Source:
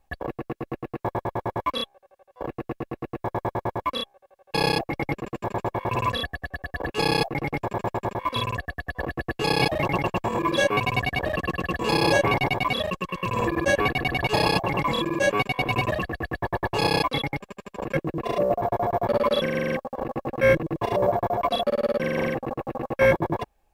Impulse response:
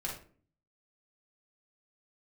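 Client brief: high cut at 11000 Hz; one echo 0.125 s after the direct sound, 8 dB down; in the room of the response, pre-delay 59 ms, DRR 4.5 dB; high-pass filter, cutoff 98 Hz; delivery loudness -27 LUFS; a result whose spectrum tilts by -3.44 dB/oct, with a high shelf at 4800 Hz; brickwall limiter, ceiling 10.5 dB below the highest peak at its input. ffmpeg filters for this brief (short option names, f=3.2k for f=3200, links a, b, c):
-filter_complex "[0:a]highpass=98,lowpass=11k,highshelf=f=4.8k:g=5,alimiter=limit=-17.5dB:level=0:latency=1,aecho=1:1:125:0.398,asplit=2[a][b];[1:a]atrim=start_sample=2205,adelay=59[c];[b][c]afir=irnorm=-1:irlink=0,volume=-6.5dB[d];[a][d]amix=inputs=2:normalize=0"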